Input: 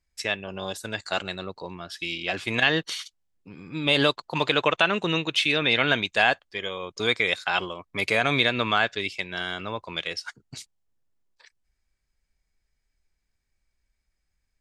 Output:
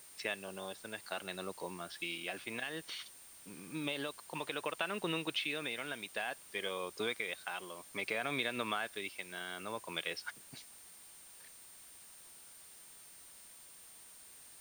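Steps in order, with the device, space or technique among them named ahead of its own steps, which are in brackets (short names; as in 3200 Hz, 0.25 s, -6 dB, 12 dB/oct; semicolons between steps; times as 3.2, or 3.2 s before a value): medium wave at night (BPF 180–3900 Hz; compressor, threshold -26 dBFS, peak gain reduction 10.5 dB; tremolo 0.59 Hz, depth 50%; whine 9000 Hz -51 dBFS; white noise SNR 16 dB); gain -5.5 dB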